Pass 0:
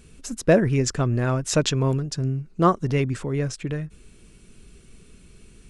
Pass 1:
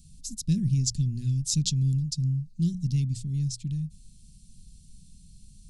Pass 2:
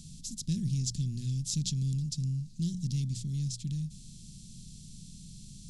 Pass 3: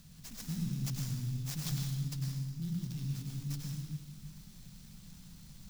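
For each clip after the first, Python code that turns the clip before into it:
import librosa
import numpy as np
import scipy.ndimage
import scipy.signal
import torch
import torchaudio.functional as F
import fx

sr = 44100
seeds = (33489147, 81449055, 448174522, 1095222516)

y1 = scipy.signal.sosfilt(scipy.signal.cheby1(3, 1.0, [180.0, 4200.0], 'bandstop', fs=sr, output='sos'), x)
y1 = fx.hum_notches(y1, sr, base_hz=60, count=3)
y2 = fx.bin_compress(y1, sr, power=0.6)
y2 = F.gain(torch.from_numpy(y2), -8.0).numpy()
y3 = fx.rev_plate(y2, sr, seeds[0], rt60_s=1.4, hf_ratio=0.9, predelay_ms=85, drr_db=-2.0)
y3 = fx.clock_jitter(y3, sr, seeds[1], jitter_ms=0.026)
y3 = F.gain(torch.from_numpy(y3), -8.0).numpy()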